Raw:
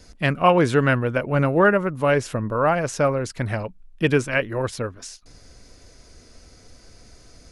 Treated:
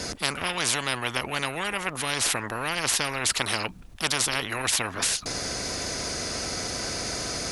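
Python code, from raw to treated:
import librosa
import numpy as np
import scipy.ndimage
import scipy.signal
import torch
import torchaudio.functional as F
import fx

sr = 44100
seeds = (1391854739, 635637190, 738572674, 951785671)

p1 = scipy.signal.sosfilt(scipy.signal.butter(2, 110.0, 'highpass', fs=sr, output='sos'), x)
p2 = fx.low_shelf(p1, sr, hz=160.0, db=9.0)
p3 = fx.rider(p2, sr, range_db=10, speed_s=0.5)
p4 = p2 + F.gain(torch.from_numpy(p3), -1.5).numpy()
p5 = fx.spectral_comp(p4, sr, ratio=10.0)
y = F.gain(torch.from_numpy(p5), -6.5).numpy()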